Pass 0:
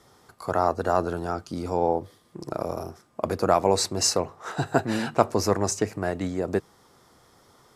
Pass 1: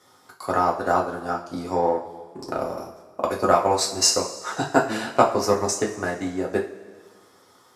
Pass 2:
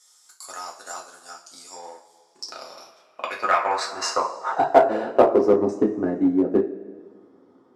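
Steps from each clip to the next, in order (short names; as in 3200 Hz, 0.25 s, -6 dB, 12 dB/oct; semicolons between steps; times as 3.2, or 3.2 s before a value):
HPF 430 Hz 6 dB/oct; transient shaper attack +5 dB, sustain -9 dB; two-slope reverb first 0.33 s, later 1.8 s, from -16 dB, DRR -2 dB; gain -1.5 dB
band-pass sweep 7400 Hz -> 280 Hz, 2.11–5.7; in parallel at -4 dB: overloaded stage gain 24.5 dB; on the sum: gain +6.5 dB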